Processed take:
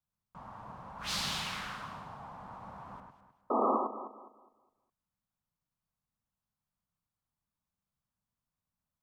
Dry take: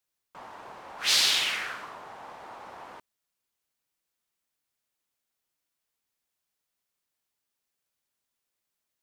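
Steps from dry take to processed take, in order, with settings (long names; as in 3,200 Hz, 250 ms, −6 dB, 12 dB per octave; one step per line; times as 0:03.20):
drawn EQ curve 190 Hz 0 dB, 360 Hz −20 dB, 1,100 Hz −11 dB, 1,900 Hz −22 dB
sound drawn into the spectrogram noise, 0:03.50–0:03.77, 210–1,300 Hz −37 dBFS
on a send: delay that swaps between a low-pass and a high-pass 103 ms, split 2,200 Hz, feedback 57%, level −3.5 dB
on the sum: level +8.5 dB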